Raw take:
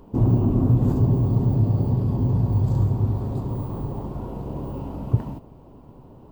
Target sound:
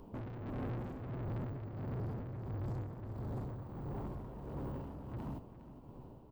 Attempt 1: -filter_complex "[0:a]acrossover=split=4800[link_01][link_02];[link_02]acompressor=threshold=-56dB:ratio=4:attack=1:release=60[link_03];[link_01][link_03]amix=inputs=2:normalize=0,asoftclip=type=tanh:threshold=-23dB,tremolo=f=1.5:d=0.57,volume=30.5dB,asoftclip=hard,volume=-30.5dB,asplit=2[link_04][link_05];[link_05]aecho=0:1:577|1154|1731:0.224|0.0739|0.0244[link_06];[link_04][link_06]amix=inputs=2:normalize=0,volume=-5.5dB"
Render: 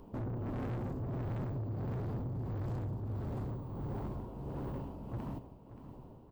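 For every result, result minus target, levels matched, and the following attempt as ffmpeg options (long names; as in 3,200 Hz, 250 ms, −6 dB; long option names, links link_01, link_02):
echo 168 ms late; soft clipping: distortion −4 dB
-filter_complex "[0:a]acrossover=split=4800[link_01][link_02];[link_02]acompressor=threshold=-56dB:ratio=4:attack=1:release=60[link_03];[link_01][link_03]amix=inputs=2:normalize=0,asoftclip=type=tanh:threshold=-23dB,tremolo=f=1.5:d=0.57,volume=30.5dB,asoftclip=hard,volume=-30.5dB,asplit=2[link_04][link_05];[link_05]aecho=0:1:409|818|1227:0.224|0.0739|0.0244[link_06];[link_04][link_06]amix=inputs=2:normalize=0,volume=-5.5dB"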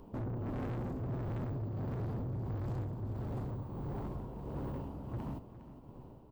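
soft clipping: distortion −4 dB
-filter_complex "[0:a]acrossover=split=4800[link_01][link_02];[link_02]acompressor=threshold=-56dB:ratio=4:attack=1:release=60[link_03];[link_01][link_03]amix=inputs=2:normalize=0,asoftclip=type=tanh:threshold=-31.5dB,tremolo=f=1.5:d=0.57,volume=30.5dB,asoftclip=hard,volume=-30.5dB,asplit=2[link_04][link_05];[link_05]aecho=0:1:409|818|1227:0.224|0.0739|0.0244[link_06];[link_04][link_06]amix=inputs=2:normalize=0,volume=-5.5dB"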